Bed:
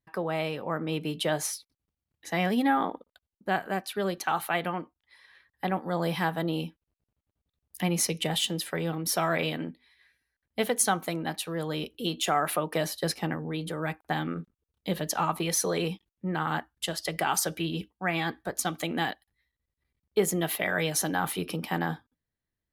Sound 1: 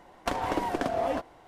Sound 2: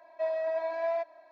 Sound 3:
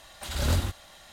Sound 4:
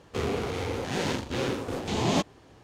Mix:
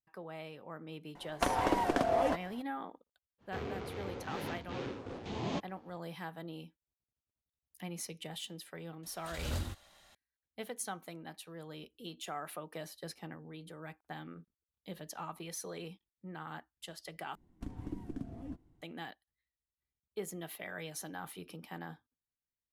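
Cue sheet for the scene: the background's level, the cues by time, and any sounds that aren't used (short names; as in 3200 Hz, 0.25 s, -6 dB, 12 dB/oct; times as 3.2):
bed -15.5 dB
1.15 add 1 -1 dB
3.38 add 4 -11 dB, fades 0.05 s + air absorption 120 m
9.03 add 3 -11.5 dB
17.35 replace with 1 -2.5 dB + EQ curve 120 Hz 0 dB, 290 Hz -5 dB, 570 Hz -28 dB, 5000 Hz -24 dB, 7800 Hz -20 dB
not used: 2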